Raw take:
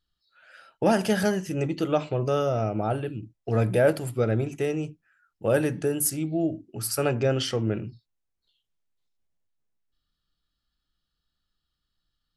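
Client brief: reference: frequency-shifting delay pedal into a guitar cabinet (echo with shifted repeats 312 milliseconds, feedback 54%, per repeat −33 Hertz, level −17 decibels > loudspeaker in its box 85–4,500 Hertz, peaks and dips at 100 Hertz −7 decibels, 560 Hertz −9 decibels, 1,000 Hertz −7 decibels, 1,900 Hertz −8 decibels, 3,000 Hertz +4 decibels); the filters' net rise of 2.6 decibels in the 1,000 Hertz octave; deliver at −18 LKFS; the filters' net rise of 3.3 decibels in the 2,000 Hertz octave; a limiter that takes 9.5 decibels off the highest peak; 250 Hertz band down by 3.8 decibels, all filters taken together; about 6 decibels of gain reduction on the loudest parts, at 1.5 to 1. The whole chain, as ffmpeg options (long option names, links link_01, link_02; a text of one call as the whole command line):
ffmpeg -i in.wav -filter_complex "[0:a]equalizer=frequency=250:width_type=o:gain=-5,equalizer=frequency=1000:width_type=o:gain=7.5,equalizer=frequency=2000:width_type=o:gain=5.5,acompressor=threshold=-31dB:ratio=1.5,alimiter=limit=-22.5dB:level=0:latency=1,asplit=6[link_01][link_02][link_03][link_04][link_05][link_06];[link_02]adelay=312,afreqshift=-33,volume=-17dB[link_07];[link_03]adelay=624,afreqshift=-66,volume=-22.4dB[link_08];[link_04]adelay=936,afreqshift=-99,volume=-27.7dB[link_09];[link_05]adelay=1248,afreqshift=-132,volume=-33.1dB[link_10];[link_06]adelay=1560,afreqshift=-165,volume=-38.4dB[link_11];[link_01][link_07][link_08][link_09][link_10][link_11]amix=inputs=6:normalize=0,highpass=85,equalizer=frequency=100:width_type=q:width=4:gain=-7,equalizer=frequency=560:width_type=q:width=4:gain=-9,equalizer=frequency=1000:width_type=q:width=4:gain=-7,equalizer=frequency=1900:width_type=q:width=4:gain=-8,equalizer=frequency=3000:width_type=q:width=4:gain=4,lowpass=frequency=4500:width=0.5412,lowpass=frequency=4500:width=1.3066,volume=18dB" out.wav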